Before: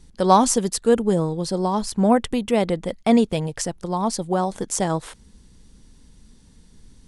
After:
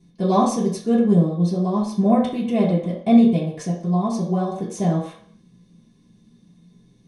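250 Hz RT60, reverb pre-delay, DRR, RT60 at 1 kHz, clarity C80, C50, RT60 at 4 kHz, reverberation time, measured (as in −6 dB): 0.40 s, 3 ms, −8.5 dB, 0.55 s, 9.0 dB, 5.0 dB, 0.60 s, 0.50 s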